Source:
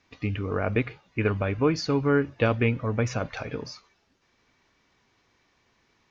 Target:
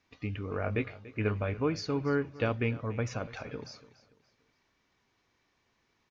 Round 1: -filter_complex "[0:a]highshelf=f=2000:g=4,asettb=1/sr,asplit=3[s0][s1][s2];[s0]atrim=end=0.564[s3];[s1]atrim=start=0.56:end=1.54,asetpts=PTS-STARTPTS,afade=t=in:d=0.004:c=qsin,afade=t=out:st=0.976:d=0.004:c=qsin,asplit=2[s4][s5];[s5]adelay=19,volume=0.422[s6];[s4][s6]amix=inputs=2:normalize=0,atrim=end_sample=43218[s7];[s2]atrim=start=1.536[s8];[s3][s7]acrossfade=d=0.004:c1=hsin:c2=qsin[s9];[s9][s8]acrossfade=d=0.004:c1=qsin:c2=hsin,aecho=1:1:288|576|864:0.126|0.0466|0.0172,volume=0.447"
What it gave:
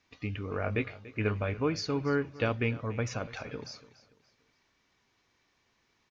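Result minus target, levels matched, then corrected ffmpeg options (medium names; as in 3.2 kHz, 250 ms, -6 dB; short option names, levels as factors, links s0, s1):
4 kHz band +3.0 dB
-filter_complex "[0:a]asettb=1/sr,asplit=3[s0][s1][s2];[s0]atrim=end=0.564[s3];[s1]atrim=start=0.56:end=1.54,asetpts=PTS-STARTPTS,afade=t=in:d=0.004:c=qsin,afade=t=out:st=0.976:d=0.004:c=qsin,asplit=2[s4][s5];[s5]adelay=19,volume=0.422[s6];[s4][s6]amix=inputs=2:normalize=0,atrim=end_sample=43218[s7];[s2]atrim=start=1.536[s8];[s3][s7]acrossfade=d=0.004:c1=hsin:c2=qsin[s9];[s9][s8]acrossfade=d=0.004:c1=qsin:c2=hsin,aecho=1:1:288|576|864:0.126|0.0466|0.0172,volume=0.447"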